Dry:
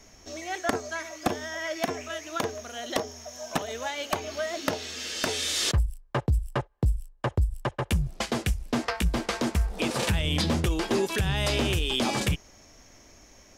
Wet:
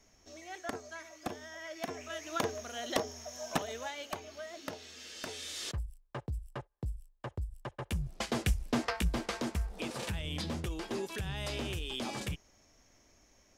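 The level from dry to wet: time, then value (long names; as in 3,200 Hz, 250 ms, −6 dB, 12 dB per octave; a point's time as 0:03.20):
0:01.72 −12 dB
0:02.32 −3.5 dB
0:03.53 −3.5 dB
0:04.32 −13.5 dB
0:07.60 −13.5 dB
0:08.54 −2.5 dB
0:10.00 −11.5 dB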